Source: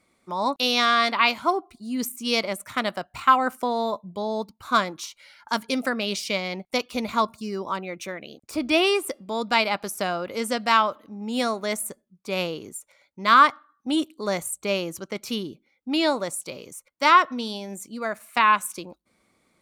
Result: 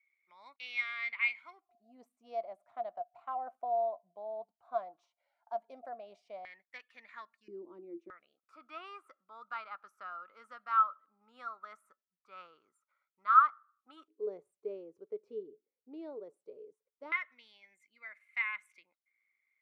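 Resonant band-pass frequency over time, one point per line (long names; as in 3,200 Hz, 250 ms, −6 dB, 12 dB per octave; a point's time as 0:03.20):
resonant band-pass, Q 19
2,200 Hz
from 0:01.69 700 Hz
from 0:06.45 1,800 Hz
from 0:07.48 340 Hz
from 0:08.10 1,300 Hz
from 0:14.08 430 Hz
from 0:17.12 2,100 Hz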